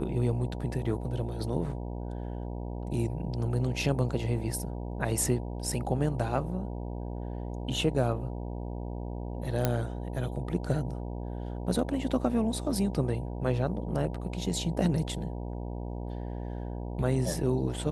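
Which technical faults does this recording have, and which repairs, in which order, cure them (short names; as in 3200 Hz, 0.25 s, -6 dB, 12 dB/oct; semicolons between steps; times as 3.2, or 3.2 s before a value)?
buzz 60 Hz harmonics 16 -36 dBFS
9.65 pop -11 dBFS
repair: de-click; de-hum 60 Hz, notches 16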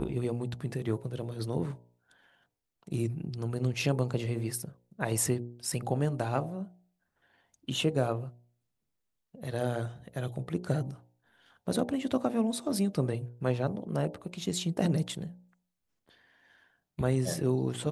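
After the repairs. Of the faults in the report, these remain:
none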